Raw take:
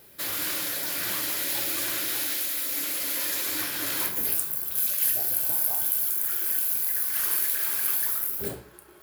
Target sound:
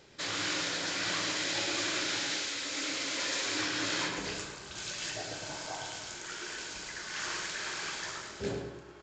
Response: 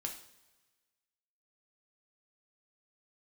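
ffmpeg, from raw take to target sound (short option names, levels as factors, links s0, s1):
-filter_complex "[0:a]asplit=2[s0][s1];[s1]adelay=107,lowpass=f=4800:p=1,volume=0.501,asplit=2[s2][s3];[s3]adelay=107,lowpass=f=4800:p=1,volume=0.41,asplit=2[s4][s5];[s5]adelay=107,lowpass=f=4800:p=1,volume=0.41,asplit=2[s6][s7];[s7]adelay=107,lowpass=f=4800:p=1,volume=0.41,asplit=2[s8][s9];[s9]adelay=107,lowpass=f=4800:p=1,volume=0.41[s10];[s0][s2][s4][s6][s8][s10]amix=inputs=6:normalize=0,acrusher=bits=4:mode=log:mix=0:aa=0.000001,bandreject=f=64.36:t=h:w=4,bandreject=f=128.72:t=h:w=4,bandreject=f=193.08:t=h:w=4,bandreject=f=257.44:t=h:w=4,bandreject=f=321.8:t=h:w=4,bandreject=f=386.16:t=h:w=4,bandreject=f=450.52:t=h:w=4,bandreject=f=514.88:t=h:w=4,bandreject=f=579.24:t=h:w=4,bandreject=f=643.6:t=h:w=4,bandreject=f=707.96:t=h:w=4,bandreject=f=772.32:t=h:w=4,bandreject=f=836.68:t=h:w=4,bandreject=f=901.04:t=h:w=4,bandreject=f=965.4:t=h:w=4,bandreject=f=1029.76:t=h:w=4,bandreject=f=1094.12:t=h:w=4,bandreject=f=1158.48:t=h:w=4,bandreject=f=1222.84:t=h:w=4,bandreject=f=1287.2:t=h:w=4,bandreject=f=1351.56:t=h:w=4,bandreject=f=1415.92:t=h:w=4,bandreject=f=1480.28:t=h:w=4,bandreject=f=1544.64:t=h:w=4,bandreject=f=1609:t=h:w=4,bandreject=f=1673.36:t=h:w=4,bandreject=f=1737.72:t=h:w=4,bandreject=f=1802.08:t=h:w=4,bandreject=f=1866.44:t=h:w=4,bandreject=f=1930.8:t=h:w=4,aresample=16000,aresample=44100"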